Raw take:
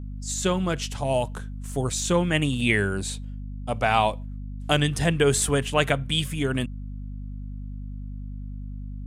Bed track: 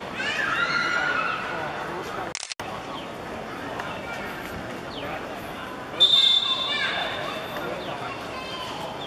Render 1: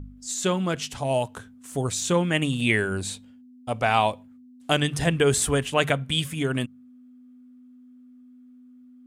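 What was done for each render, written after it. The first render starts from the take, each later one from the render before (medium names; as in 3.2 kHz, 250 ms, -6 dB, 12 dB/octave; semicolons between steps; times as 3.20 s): de-hum 50 Hz, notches 4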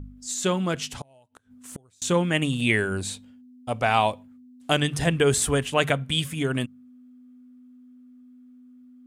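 0.87–2.02 s: inverted gate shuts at -22 dBFS, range -32 dB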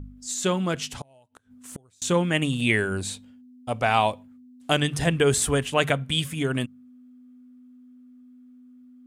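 no audible change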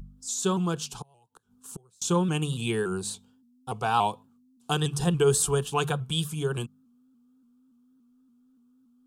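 static phaser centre 400 Hz, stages 8; vibrato with a chosen wave saw up 3.5 Hz, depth 100 cents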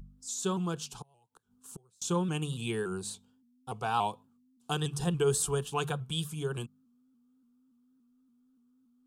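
trim -5.5 dB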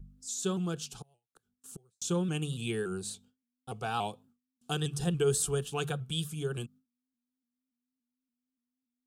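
gate with hold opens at -55 dBFS; peaking EQ 980 Hz -12 dB 0.37 oct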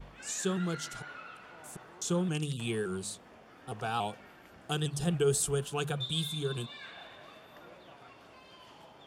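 add bed track -21.5 dB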